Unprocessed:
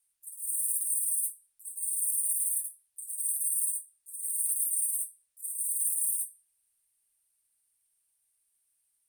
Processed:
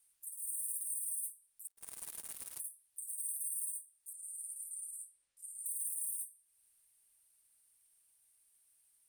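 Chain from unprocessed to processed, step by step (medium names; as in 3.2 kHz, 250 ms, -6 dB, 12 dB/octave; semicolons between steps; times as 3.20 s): 1.67–2.60 s: power-law waveshaper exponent 3; 4.13–5.66 s: distance through air 80 m; compression 2:1, threshold -52 dBFS, peak gain reduction 14.5 dB; trim +4 dB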